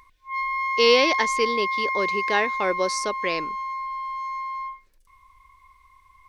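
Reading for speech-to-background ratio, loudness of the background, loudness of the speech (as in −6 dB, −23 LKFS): 2.5 dB, −26.5 LKFS, −24.0 LKFS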